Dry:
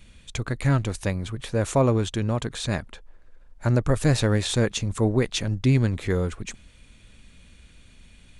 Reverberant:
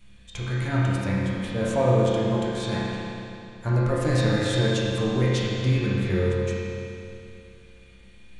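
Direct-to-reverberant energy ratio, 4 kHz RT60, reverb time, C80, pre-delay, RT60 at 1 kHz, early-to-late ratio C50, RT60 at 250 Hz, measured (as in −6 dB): −8.0 dB, 2.6 s, 2.7 s, −1.5 dB, 6 ms, 2.8 s, −3.5 dB, 2.7 s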